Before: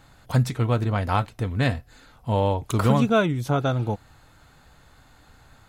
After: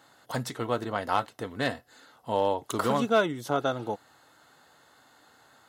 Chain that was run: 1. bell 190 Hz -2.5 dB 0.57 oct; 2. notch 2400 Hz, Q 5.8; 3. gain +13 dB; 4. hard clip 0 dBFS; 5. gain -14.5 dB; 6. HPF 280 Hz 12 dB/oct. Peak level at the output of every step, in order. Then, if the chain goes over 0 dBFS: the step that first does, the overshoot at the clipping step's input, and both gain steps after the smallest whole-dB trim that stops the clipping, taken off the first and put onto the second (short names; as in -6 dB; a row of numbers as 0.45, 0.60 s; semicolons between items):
-8.5, -8.5, +4.5, 0.0, -14.5, -10.5 dBFS; step 3, 4.5 dB; step 3 +8 dB, step 5 -9.5 dB